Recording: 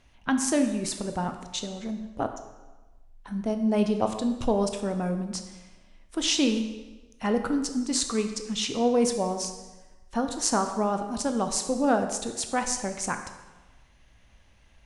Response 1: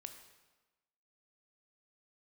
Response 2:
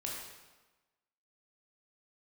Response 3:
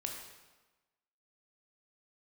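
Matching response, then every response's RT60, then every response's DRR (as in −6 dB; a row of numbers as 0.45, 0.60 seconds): 1; 1.2, 1.2, 1.2 seconds; 6.5, −3.5, 1.0 decibels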